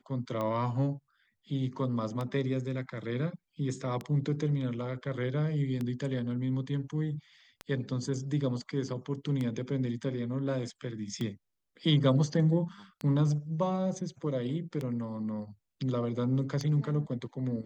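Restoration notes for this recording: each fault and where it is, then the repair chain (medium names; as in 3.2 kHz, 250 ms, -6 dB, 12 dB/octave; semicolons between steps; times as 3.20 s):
tick 33 1/3 rpm -22 dBFS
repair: de-click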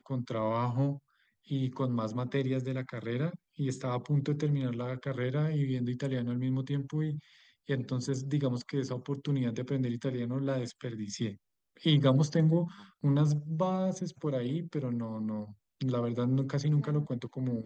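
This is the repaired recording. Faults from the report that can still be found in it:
nothing left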